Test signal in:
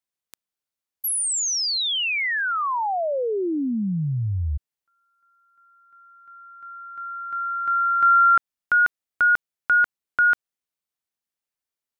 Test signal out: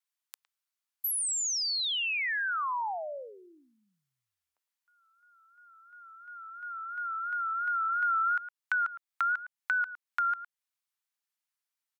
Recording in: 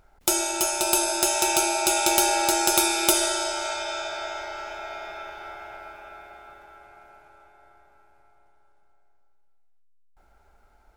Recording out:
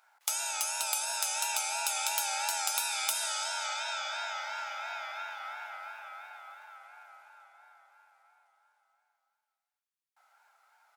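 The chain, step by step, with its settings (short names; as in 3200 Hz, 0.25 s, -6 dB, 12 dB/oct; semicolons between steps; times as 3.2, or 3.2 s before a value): vibrato 2.9 Hz 74 cents; HPF 860 Hz 24 dB/oct; speakerphone echo 0.11 s, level -17 dB; compressor 2.5:1, threshold -33 dBFS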